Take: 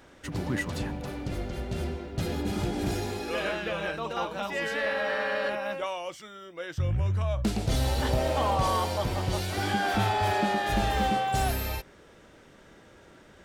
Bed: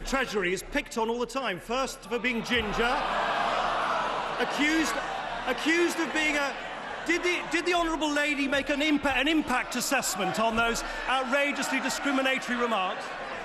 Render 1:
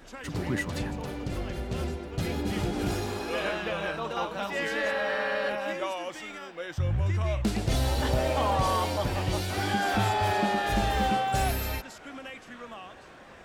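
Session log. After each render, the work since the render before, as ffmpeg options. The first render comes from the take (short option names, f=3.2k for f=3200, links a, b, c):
-filter_complex "[1:a]volume=-16dB[a];[0:a][a]amix=inputs=2:normalize=0"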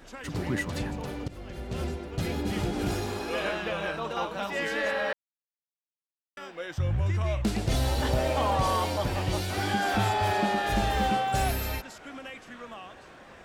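-filter_complex "[0:a]asplit=4[a][b][c][d];[a]atrim=end=1.28,asetpts=PTS-STARTPTS,afade=t=out:st=1.276:d=0.004:c=hsin:silence=0.188365[e];[b]atrim=start=1.28:end=5.13,asetpts=PTS-STARTPTS,afade=t=in:d=0.57:silence=0.188365,afade=t=out:st=3.846:d=0.004:c=hsin[f];[c]atrim=start=5.13:end=6.37,asetpts=PTS-STARTPTS,volume=0[g];[d]atrim=start=6.37,asetpts=PTS-STARTPTS,afade=t=in:d=0.004:c=hsin[h];[e][f][g][h]concat=n=4:v=0:a=1"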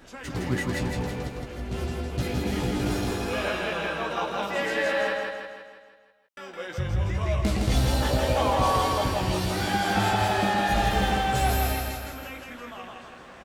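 -filter_complex "[0:a]asplit=2[a][b];[b]adelay=16,volume=-5.5dB[c];[a][c]amix=inputs=2:normalize=0,asplit=2[d][e];[e]aecho=0:1:163|326|489|652|815|978|1141:0.668|0.348|0.181|0.094|0.0489|0.0254|0.0132[f];[d][f]amix=inputs=2:normalize=0"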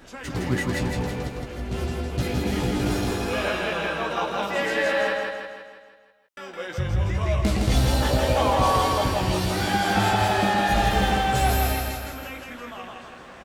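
-af "volume=2.5dB"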